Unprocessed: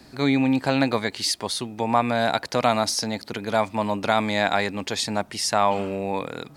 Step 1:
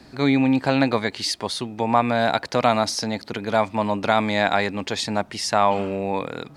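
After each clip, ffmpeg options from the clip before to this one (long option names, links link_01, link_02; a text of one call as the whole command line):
ffmpeg -i in.wav -af "highshelf=frequency=8300:gain=-11.5,volume=2dB" out.wav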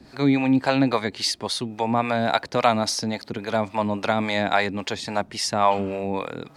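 ffmpeg -i in.wav -filter_complex "[0:a]acrossover=split=460[link_01][link_02];[link_01]aeval=exprs='val(0)*(1-0.7/2+0.7/2*cos(2*PI*3.6*n/s))':channel_layout=same[link_03];[link_02]aeval=exprs='val(0)*(1-0.7/2-0.7/2*cos(2*PI*3.6*n/s))':channel_layout=same[link_04];[link_03][link_04]amix=inputs=2:normalize=0,volume=2dB" out.wav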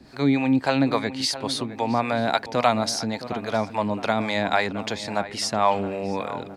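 ffmpeg -i in.wav -filter_complex "[0:a]asplit=2[link_01][link_02];[link_02]adelay=666,lowpass=frequency=2100:poles=1,volume=-13dB,asplit=2[link_03][link_04];[link_04]adelay=666,lowpass=frequency=2100:poles=1,volume=0.4,asplit=2[link_05][link_06];[link_06]adelay=666,lowpass=frequency=2100:poles=1,volume=0.4,asplit=2[link_07][link_08];[link_08]adelay=666,lowpass=frequency=2100:poles=1,volume=0.4[link_09];[link_01][link_03][link_05][link_07][link_09]amix=inputs=5:normalize=0,volume=-1dB" out.wav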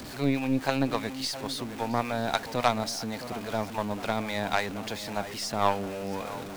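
ffmpeg -i in.wav -af "aeval=exprs='val(0)+0.5*0.0631*sgn(val(0))':channel_layout=same,aeval=exprs='0.531*(cos(1*acos(clip(val(0)/0.531,-1,1)))-cos(1*PI/2))+0.119*(cos(3*acos(clip(val(0)/0.531,-1,1)))-cos(3*PI/2))+0.0299*(cos(6*acos(clip(val(0)/0.531,-1,1)))-cos(6*PI/2))+0.0133*(cos(8*acos(clip(val(0)/0.531,-1,1)))-cos(8*PI/2))':channel_layout=same,volume=-2dB" out.wav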